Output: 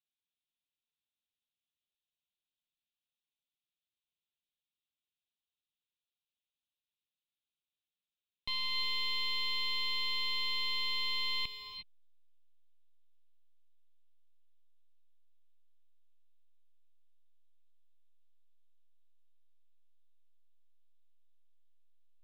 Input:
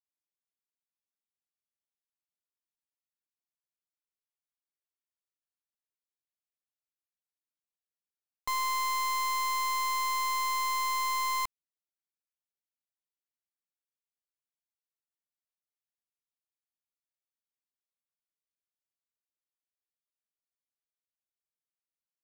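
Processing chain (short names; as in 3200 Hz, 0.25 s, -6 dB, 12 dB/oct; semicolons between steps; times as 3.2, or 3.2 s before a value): in parallel at -10 dB: backlash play -45.5 dBFS; on the sum: EQ curve 180 Hz 0 dB, 1600 Hz -23 dB, 2500 Hz +4 dB, 3700 Hz +9 dB, 6300 Hz -27 dB; non-linear reverb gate 0.38 s rising, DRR 6.5 dB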